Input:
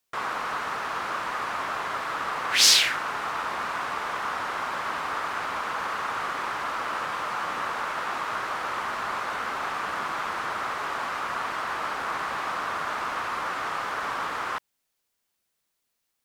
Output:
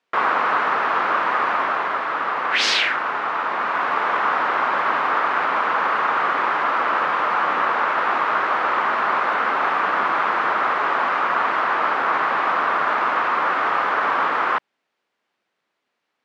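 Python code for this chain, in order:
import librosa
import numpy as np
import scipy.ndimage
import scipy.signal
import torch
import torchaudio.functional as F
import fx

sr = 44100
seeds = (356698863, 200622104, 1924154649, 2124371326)

y = fx.rider(x, sr, range_db=10, speed_s=2.0)
y = fx.bandpass_edges(y, sr, low_hz=230.0, high_hz=2400.0)
y = y * librosa.db_to_amplitude(8.5)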